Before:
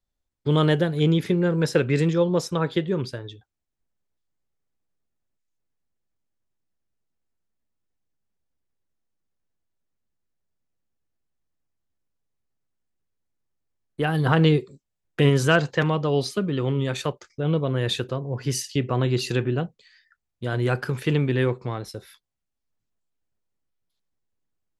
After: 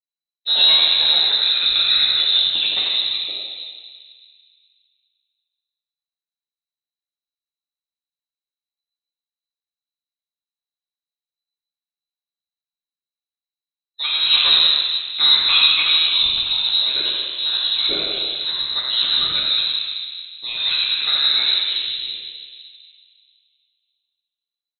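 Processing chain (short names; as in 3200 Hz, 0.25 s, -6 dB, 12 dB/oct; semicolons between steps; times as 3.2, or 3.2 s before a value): rattling part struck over -23 dBFS, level -27 dBFS; on a send: frequency-shifting echo 85 ms, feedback 50%, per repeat -71 Hz, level -5.5 dB; on the sum: spectral noise reduction 20 dB; plate-style reverb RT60 2.4 s, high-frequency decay 0.6×, DRR -4.5 dB; inverted band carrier 4000 Hz; gain -3.5 dB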